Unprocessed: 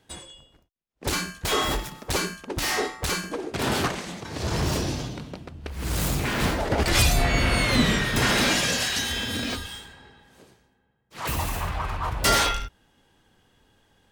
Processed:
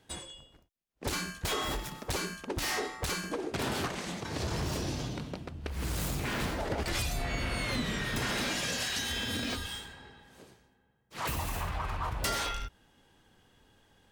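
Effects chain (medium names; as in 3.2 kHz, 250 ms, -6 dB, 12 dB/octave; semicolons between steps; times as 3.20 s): compression 5:1, threshold -29 dBFS, peak gain reduction 12.5 dB; trim -1.5 dB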